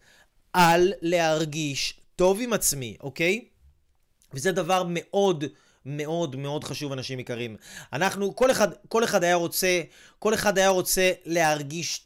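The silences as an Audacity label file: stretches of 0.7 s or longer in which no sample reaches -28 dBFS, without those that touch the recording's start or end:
3.380000	4.360000	silence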